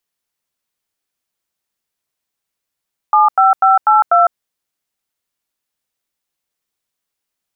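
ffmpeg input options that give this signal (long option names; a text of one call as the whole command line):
ffmpeg -f lavfi -i "aevalsrc='0.335*clip(min(mod(t,0.246),0.155-mod(t,0.246))/0.002,0,1)*(eq(floor(t/0.246),0)*(sin(2*PI*852*mod(t,0.246))+sin(2*PI*1209*mod(t,0.246)))+eq(floor(t/0.246),1)*(sin(2*PI*770*mod(t,0.246))+sin(2*PI*1336*mod(t,0.246)))+eq(floor(t/0.246),2)*(sin(2*PI*770*mod(t,0.246))+sin(2*PI*1336*mod(t,0.246)))+eq(floor(t/0.246),3)*(sin(2*PI*852*mod(t,0.246))+sin(2*PI*1336*mod(t,0.246)))+eq(floor(t/0.246),4)*(sin(2*PI*697*mod(t,0.246))+sin(2*PI*1336*mod(t,0.246))))':duration=1.23:sample_rate=44100" out.wav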